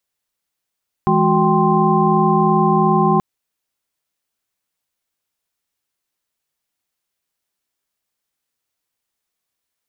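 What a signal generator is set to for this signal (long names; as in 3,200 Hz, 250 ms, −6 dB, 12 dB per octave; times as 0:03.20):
held notes E3/G#3/F#4/G5/C6 sine, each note −18 dBFS 2.13 s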